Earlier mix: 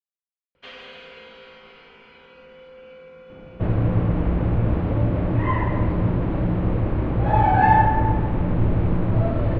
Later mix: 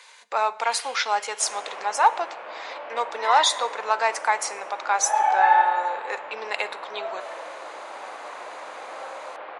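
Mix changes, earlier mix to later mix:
speech: unmuted; second sound: entry -2.20 s; reverb: on, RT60 0.85 s; master: add HPF 700 Hz 24 dB/oct

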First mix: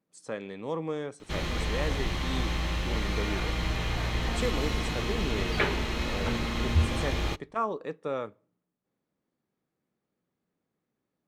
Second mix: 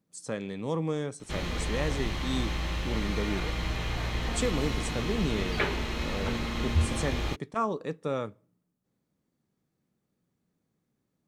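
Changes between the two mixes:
speech: add tone controls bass +9 dB, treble +9 dB; background: send off

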